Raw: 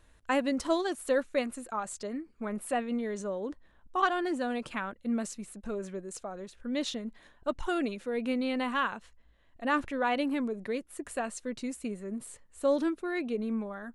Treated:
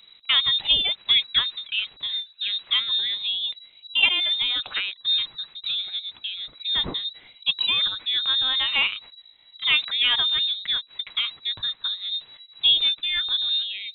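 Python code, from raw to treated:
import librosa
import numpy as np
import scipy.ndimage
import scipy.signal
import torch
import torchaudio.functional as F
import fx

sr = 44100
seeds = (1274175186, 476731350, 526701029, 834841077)

y = fx.freq_invert(x, sr, carrier_hz=3900)
y = F.gain(torch.from_numpy(y), 7.5).numpy()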